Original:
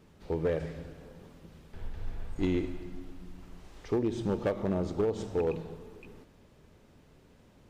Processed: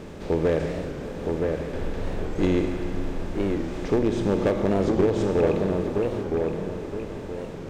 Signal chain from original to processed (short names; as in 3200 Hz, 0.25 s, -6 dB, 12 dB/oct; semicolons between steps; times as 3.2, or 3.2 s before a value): per-bin compression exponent 0.6; dark delay 0.969 s, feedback 34%, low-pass 2500 Hz, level -3.5 dB; record warp 45 rpm, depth 160 cents; gain +4.5 dB